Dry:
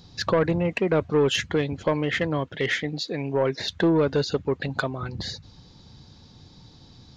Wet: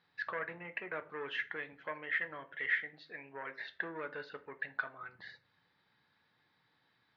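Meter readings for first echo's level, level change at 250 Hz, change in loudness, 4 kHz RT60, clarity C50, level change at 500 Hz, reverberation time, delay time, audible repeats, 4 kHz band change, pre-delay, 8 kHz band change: none, -27.5 dB, -14.5 dB, 0.30 s, 17.0 dB, -22.5 dB, 0.40 s, none, none, -20.5 dB, 5 ms, n/a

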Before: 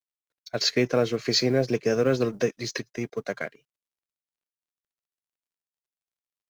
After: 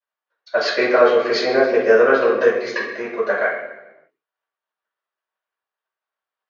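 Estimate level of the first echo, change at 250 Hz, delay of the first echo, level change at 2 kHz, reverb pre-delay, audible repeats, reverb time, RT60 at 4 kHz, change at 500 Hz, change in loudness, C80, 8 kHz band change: none, +1.5 dB, none, +13.5 dB, 3 ms, none, 1.1 s, 0.85 s, +10.5 dB, +8.5 dB, 6.5 dB, n/a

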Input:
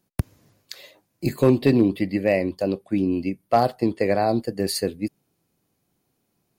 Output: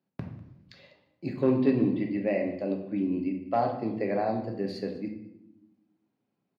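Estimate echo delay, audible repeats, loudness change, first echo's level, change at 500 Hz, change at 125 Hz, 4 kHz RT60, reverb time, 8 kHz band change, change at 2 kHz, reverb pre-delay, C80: 0.198 s, 1, -6.5 dB, -20.0 dB, -7.0 dB, -8.5 dB, 0.60 s, 0.80 s, under -25 dB, -9.0 dB, 3 ms, 9.5 dB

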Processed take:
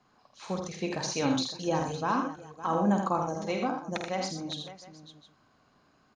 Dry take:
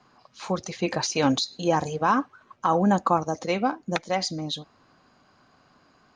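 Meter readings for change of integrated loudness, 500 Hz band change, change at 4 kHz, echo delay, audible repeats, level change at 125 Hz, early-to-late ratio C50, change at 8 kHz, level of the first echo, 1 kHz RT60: -5.5 dB, -5.0 dB, -6.0 dB, 49 ms, 5, -4.5 dB, none, -4.5 dB, -8.0 dB, none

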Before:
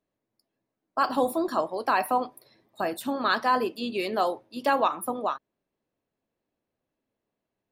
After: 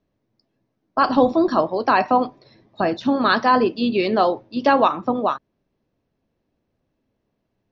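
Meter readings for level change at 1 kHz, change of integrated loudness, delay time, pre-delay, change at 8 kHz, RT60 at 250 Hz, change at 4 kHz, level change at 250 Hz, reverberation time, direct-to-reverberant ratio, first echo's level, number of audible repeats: +7.0 dB, +7.5 dB, none, none, under -10 dB, none, +6.0 dB, +11.5 dB, none, none, none, none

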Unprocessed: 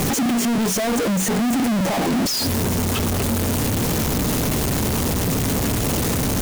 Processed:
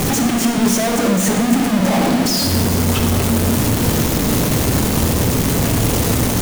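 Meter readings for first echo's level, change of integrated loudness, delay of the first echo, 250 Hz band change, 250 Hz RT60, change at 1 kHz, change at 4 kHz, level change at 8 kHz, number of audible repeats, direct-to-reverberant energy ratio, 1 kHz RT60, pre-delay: none, +4.5 dB, none, +4.5 dB, 2.0 s, +4.0 dB, +4.0 dB, +4.0 dB, none, 3.5 dB, 1.5 s, 21 ms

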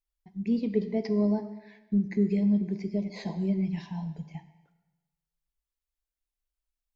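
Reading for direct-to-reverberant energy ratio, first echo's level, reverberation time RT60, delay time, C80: 10.0 dB, none, 1.1 s, none, 14.0 dB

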